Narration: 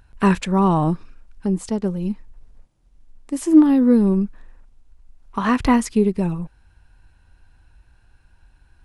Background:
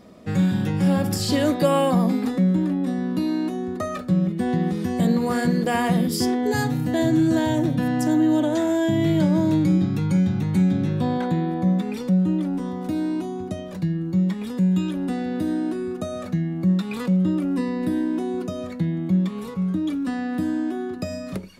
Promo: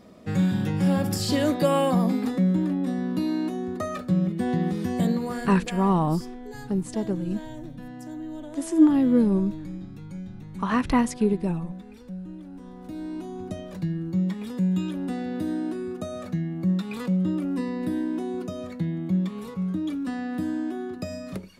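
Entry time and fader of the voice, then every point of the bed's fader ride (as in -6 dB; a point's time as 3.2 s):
5.25 s, -5.0 dB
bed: 5 s -2.5 dB
5.9 s -17.5 dB
12.42 s -17.5 dB
13.49 s -4 dB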